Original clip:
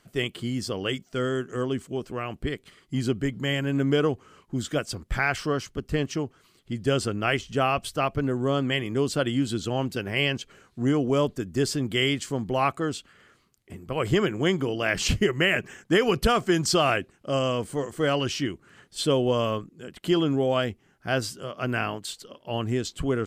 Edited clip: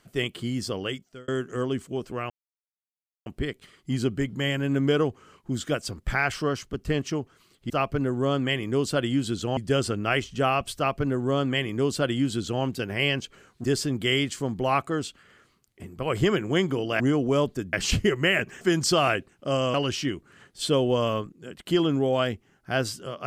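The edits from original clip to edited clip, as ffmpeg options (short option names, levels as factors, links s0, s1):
-filter_complex "[0:a]asplit=10[s0][s1][s2][s3][s4][s5][s6][s7][s8][s9];[s0]atrim=end=1.28,asetpts=PTS-STARTPTS,afade=t=out:st=0.75:d=0.53[s10];[s1]atrim=start=1.28:end=2.3,asetpts=PTS-STARTPTS,afade=t=in:d=0.004:c=hsin,afade=t=out:st=1.016:d=0.004:c=hsin,apad=pad_dur=0.96[s11];[s2]atrim=start=2.3:end=6.742,asetpts=PTS-STARTPTS,afade=t=in:d=0.004:c=hsin[s12];[s3]atrim=start=7.928:end=9.802[s13];[s4]atrim=start=6.738:end=10.812[s14];[s5]atrim=start=11.538:end=14.902[s15];[s6]atrim=start=10.808:end=11.542[s16];[s7]atrim=start=14.898:end=15.782[s17];[s8]atrim=start=16.428:end=17.562[s18];[s9]atrim=start=18.108[s19];[s10][s11][s12]concat=n=3:v=0:a=1[s20];[s20][s13]acrossfade=d=0.004:c1=hsin:c2=hsin[s21];[s21][s14]acrossfade=d=0.004:c1=hsin:c2=hsin[s22];[s22][s15]acrossfade=d=0.004:c1=hsin:c2=hsin[s23];[s23][s16]acrossfade=d=0.004:c1=hsin:c2=hsin[s24];[s24][s17]acrossfade=d=0.004:c1=hsin:c2=hsin[s25];[s25][s18]acrossfade=d=0.004:c1=hsin:c2=hsin[s26];[s26][s19]acrossfade=d=0.004:c1=hsin:c2=hsin"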